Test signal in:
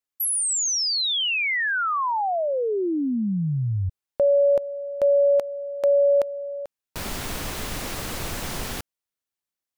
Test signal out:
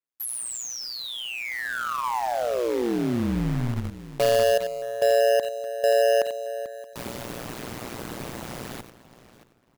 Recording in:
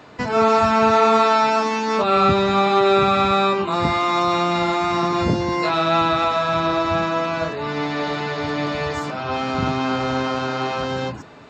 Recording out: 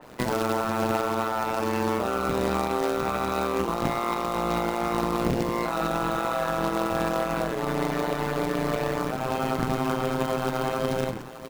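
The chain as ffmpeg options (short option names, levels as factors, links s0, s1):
-filter_complex "[0:a]highpass=f=110:w=0.5412,highpass=f=110:w=1.3066,asplit=2[s0][s1];[s1]aecho=0:1:90:0.224[s2];[s0][s2]amix=inputs=2:normalize=0,alimiter=limit=0.178:level=0:latency=1:release=65,tiltshelf=f=970:g=3.5,asplit=2[s3][s4];[s4]adelay=624,lowpass=f=3300:p=1,volume=0.158,asplit=2[s5][s6];[s6]adelay=624,lowpass=f=3300:p=1,volume=0.25[s7];[s5][s7]amix=inputs=2:normalize=0[s8];[s3][s8]amix=inputs=2:normalize=0,acrusher=bits=2:mode=log:mix=0:aa=0.000001,tremolo=f=120:d=0.974,adynamicequalizer=threshold=0.00794:dfrequency=2800:dqfactor=0.7:tfrequency=2800:tqfactor=0.7:attack=5:release=100:ratio=0.375:range=2.5:mode=cutabove:tftype=highshelf"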